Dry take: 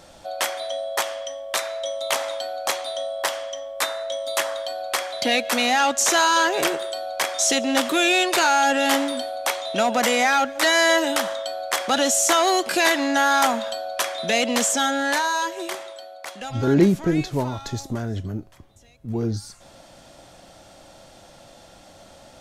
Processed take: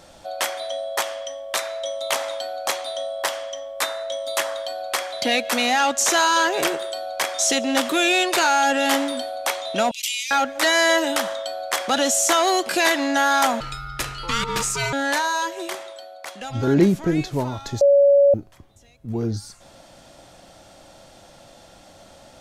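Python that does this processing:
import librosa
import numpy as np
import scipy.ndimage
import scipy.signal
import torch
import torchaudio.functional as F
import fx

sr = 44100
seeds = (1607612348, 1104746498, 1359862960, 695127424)

y = fx.steep_highpass(x, sr, hz=2400.0, slope=72, at=(9.91, 10.31))
y = fx.ring_mod(y, sr, carrier_hz=690.0, at=(13.6, 14.93))
y = fx.edit(y, sr, fx.bleep(start_s=17.81, length_s=0.53, hz=564.0, db=-10.5), tone=tone)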